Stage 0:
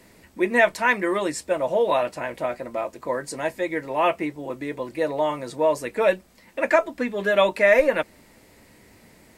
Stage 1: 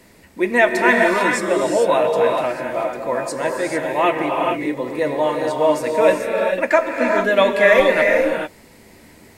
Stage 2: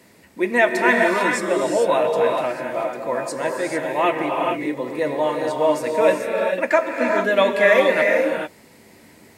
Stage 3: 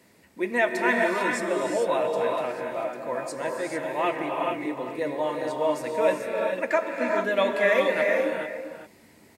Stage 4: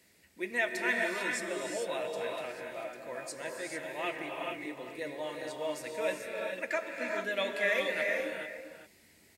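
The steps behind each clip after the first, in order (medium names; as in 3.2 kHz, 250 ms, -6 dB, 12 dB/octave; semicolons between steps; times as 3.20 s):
gated-style reverb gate 470 ms rising, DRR 0.5 dB; trim +3 dB
high-pass 97 Hz 12 dB/octave; trim -2 dB
echo from a far wall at 68 m, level -10 dB; trim -6.5 dB
graphic EQ 125/250/500/1000 Hz -7/-8/-5/-11 dB; trim -2 dB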